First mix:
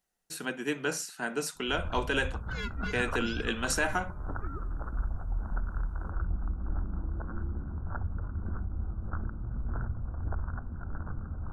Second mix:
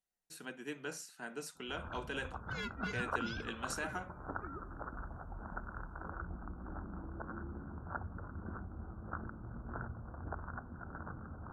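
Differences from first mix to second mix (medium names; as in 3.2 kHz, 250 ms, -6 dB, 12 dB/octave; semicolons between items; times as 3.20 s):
speech -11.5 dB; first sound: add high-pass 280 Hz 6 dB/octave; second sound -3.5 dB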